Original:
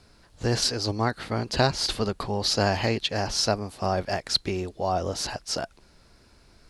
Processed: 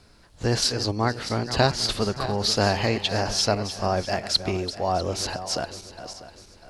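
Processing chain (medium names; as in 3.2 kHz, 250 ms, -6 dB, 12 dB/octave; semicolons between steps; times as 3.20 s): backward echo that repeats 323 ms, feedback 56%, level -11.5 dB; trim +1.5 dB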